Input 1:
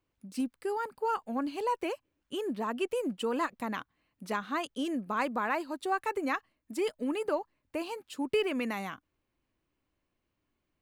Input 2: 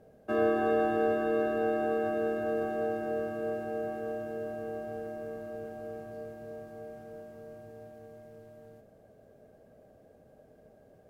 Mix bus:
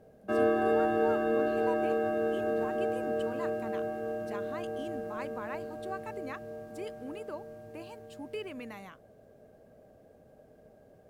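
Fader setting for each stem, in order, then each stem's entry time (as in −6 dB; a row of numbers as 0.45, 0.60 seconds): −10.5, +0.5 decibels; 0.00, 0.00 seconds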